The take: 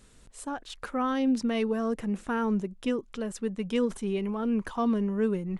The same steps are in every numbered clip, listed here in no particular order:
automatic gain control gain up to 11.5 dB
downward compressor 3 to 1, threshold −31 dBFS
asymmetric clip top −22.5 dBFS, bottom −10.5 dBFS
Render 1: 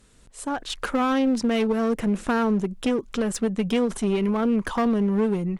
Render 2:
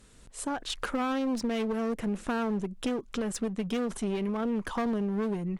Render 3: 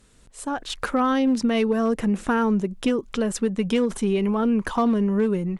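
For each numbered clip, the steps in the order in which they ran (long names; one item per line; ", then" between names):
downward compressor, then automatic gain control, then asymmetric clip
automatic gain control, then asymmetric clip, then downward compressor
asymmetric clip, then downward compressor, then automatic gain control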